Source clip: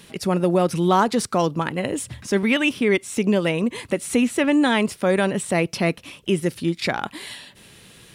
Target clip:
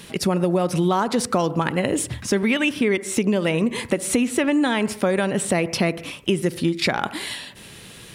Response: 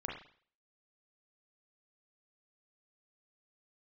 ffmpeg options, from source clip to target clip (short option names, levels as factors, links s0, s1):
-filter_complex "[0:a]asplit=2[s0][s1];[1:a]atrim=start_sample=2205,afade=t=out:st=0.19:d=0.01,atrim=end_sample=8820,asetrate=29106,aresample=44100[s2];[s1][s2]afir=irnorm=-1:irlink=0,volume=0.126[s3];[s0][s3]amix=inputs=2:normalize=0,acompressor=threshold=0.0891:ratio=6,volume=1.68"